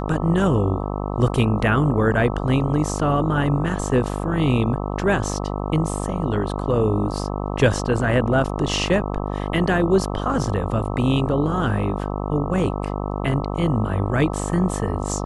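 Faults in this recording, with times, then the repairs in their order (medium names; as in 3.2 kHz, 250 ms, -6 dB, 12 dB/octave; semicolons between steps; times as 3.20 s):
buzz 50 Hz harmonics 26 -26 dBFS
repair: de-hum 50 Hz, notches 26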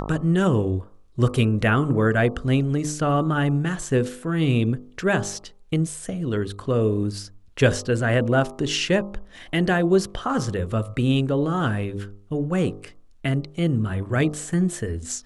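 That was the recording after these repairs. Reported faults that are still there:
nothing left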